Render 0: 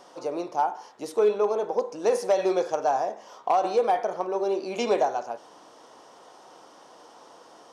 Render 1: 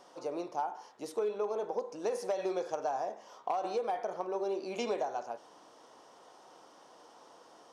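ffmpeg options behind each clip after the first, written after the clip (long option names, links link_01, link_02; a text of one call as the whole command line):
ffmpeg -i in.wav -af "acompressor=threshold=-23dB:ratio=5,volume=-6.5dB" out.wav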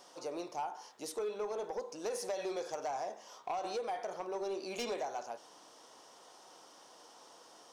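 ffmpeg -i in.wav -af "highshelf=frequency=2600:gain=10.5,asoftclip=type=tanh:threshold=-27dB,volume=-3dB" out.wav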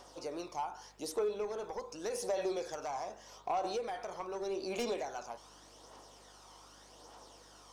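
ffmpeg -i in.wav -af "aphaser=in_gain=1:out_gain=1:delay=1:decay=0.4:speed=0.84:type=triangular,aeval=exprs='val(0)+0.000501*(sin(2*PI*50*n/s)+sin(2*PI*2*50*n/s)/2+sin(2*PI*3*50*n/s)/3+sin(2*PI*4*50*n/s)/4+sin(2*PI*5*50*n/s)/5)':channel_layout=same" out.wav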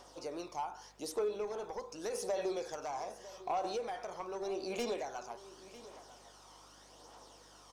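ffmpeg -i in.wav -af "aecho=1:1:953:0.141,volume=-1dB" out.wav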